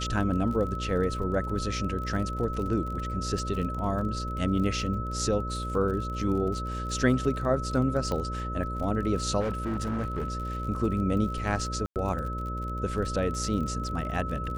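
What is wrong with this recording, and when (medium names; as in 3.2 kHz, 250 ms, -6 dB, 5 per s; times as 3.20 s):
buzz 60 Hz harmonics 10 -34 dBFS
crackle 38 per s -35 dBFS
whine 1.3 kHz -35 dBFS
8.12 s: pop -19 dBFS
9.40–10.67 s: clipped -26 dBFS
11.86–11.96 s: dropout 98 ms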